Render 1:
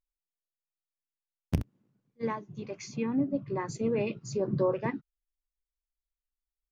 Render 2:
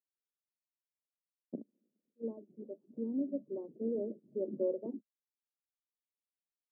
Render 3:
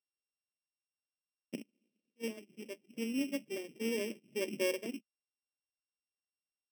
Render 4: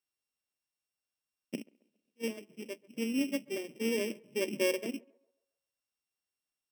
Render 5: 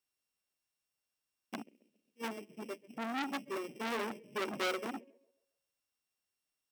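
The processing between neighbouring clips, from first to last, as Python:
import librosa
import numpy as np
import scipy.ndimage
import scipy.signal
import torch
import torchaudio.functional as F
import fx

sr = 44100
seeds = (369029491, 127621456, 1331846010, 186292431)

y1 = scipy.signal.sosfilt(scipy.signal.ellip(3, 1.0, 60, [220.0, 600.0], 'bandpass', fs=sr, output='sos'), x)
y1 = y1 * 10.0 ** (-5.5 / 20.0)
y2 = np.r_[np.sort(y1[:len(y1) // 16 * 16].reshape(-1, 16), axis=1).ravel(), y1[len(y1) // 16 * 16:]]
y3 = fx.echo_banded(y2, sr, ms=135, feedback_pct=43, hz=750.0, wet_db=-22.0)
y3 = y3 * 10.0 ** (3.5 / 20.0)
y4 = fx.transformer_sat(y3, sr, knee_hz=2800.0)
y4 = y4 * 10.0 ** (2.0 / 20.0)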